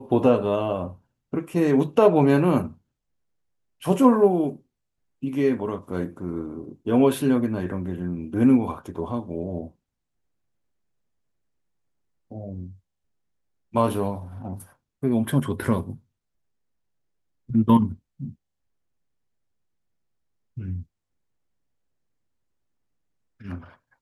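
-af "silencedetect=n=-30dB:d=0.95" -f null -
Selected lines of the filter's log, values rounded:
silence_start: 2.68
silence_end: 3.83 | silence_duration: 1.14
silence_start: 9.66
silence_end: 12.32 | silence_duration: 2.66
silence_start: 12.66
silence_end: 13.75 | silence_duration: 1.08
silence_start: 15.94
silence_end: 17.50 | silence_duration: 1.56
silence_start: 18.29
silence_end: 20.58 | silence_duration: 2.28
silence_start: 20.79
silence_end: 23.45 | silence_duration: 2.66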